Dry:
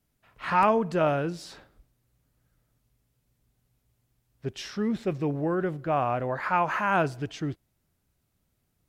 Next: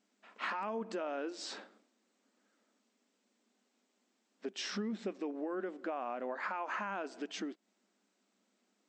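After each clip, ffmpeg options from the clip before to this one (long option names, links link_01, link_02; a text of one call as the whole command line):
ffmpeg -i in.wav -af "alimiter=limit=-20.5dB:level=0:latency=1:release=276,acompressor=threshold=-37dB:ratio=10,afftfilt=real='re*between(b*sr/4096,190,8300)':imag='im*between(b*sr/4096,190,8300)':win_size=4096:overlap=0.75,volume=2.5dB" out.wav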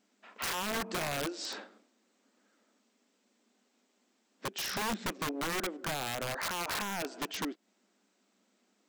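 ffmpeg -i in.wav -af "aeval=exprs='(mod(44.7*val(0)+1,2)-1)/44.7':channel_layout=same,volume=4.5dB" out.wav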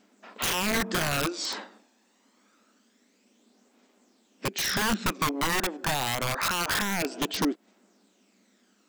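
ffmpeg -i in.wav -af "aphaser=in_gain=1:out_gain=1:delay=1.2:decay=0.42:speed=0.26:type=triangular,volume=7dB" out.wav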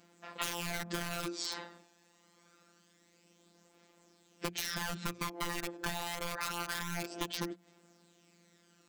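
ffmpeg -i in.wav -af "afftfilt=real='hypot(re,im)*cos(PI*b)':imag='0':win_size=1024:overlap=0.75,acompressor=threshold=-35dB:ratio=6,bandreject=frequency=60:width_type=h:width=6,bandreject=frequency=120:width_type=h:width=6,bandreject=frequency=180:width_type=h:width=6,volume=3dB" out.wav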